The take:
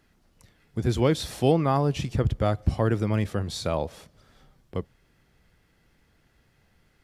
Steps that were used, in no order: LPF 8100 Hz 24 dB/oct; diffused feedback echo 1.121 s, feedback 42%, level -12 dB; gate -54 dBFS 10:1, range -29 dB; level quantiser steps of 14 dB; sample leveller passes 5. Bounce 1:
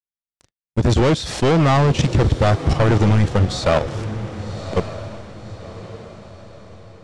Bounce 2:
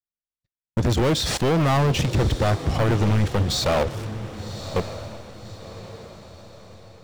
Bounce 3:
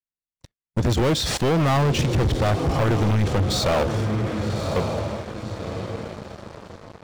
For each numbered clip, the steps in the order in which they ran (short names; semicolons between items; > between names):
sample leveller > gate > LPF > level quantiser > diffused feedback echo; LPF > level quantiser > gate > sample leveller > diffused feedback echo; gate > LPF > level quantiser > diffused feedback echo > sample leveller